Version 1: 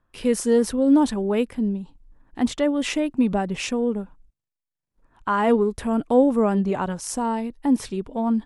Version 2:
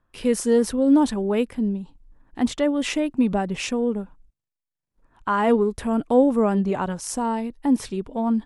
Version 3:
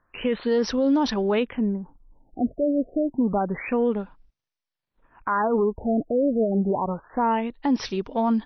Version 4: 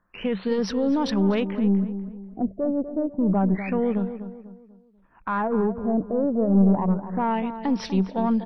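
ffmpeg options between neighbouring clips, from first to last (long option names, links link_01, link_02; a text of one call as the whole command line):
ffmpeg -i in.wav -af anull out.wav
ffmpeg -i in.wav -af "lowshelf=frequency=430:gain=-9,alimiter=limit=-21dB:level=0:latency=1:release=31,afftfilt=real='re*lt(b*sr/1024,680*pow(6400/680,0.5+0.5*sin(2*PI*0.28*pts/sr)))':imag='im*lt(b*sr/1024,680*pow(6400/680,0.5+0.5*sin(2*PI*0.28*pts/sr)))':win_size=1024:overlap=0.75,volume=6.5dB" out.wav
ffmpeg -i in.wav -filter_complex "[0:a]equalizer=frequency=190:width=6.6:gain=14.5,aeval=exprs='(tanh(3.55*val(0)+0.35)-tanh(0.35))/3.55':channel_layout=same,asplit=2[link_01][link_02];[link_02]adelay=246,lowpass=frequency=1700:poles=1,volume=-10.5dB,asplit=2[link_03][link_04];[link_04]adelay=246,lowpass=frequency=1700:poles=1,volume=0.4,asplit=2[link_05][link_06];[link_06]adelay=246,lowpass=frequency=1700:poles=1,volume=0.4,asplit=2[link_07][link_08];[link_08]adelay=246,lowpass=frequency=1700:poles=1,volume=0.4[link_09];[link_03][link_05][link_07][link_09]amix=inputs=4:normalize=0[link_10];[link_01][link_10]amix=inputs=2:normalize=0,volume=-1.5dB" out.wav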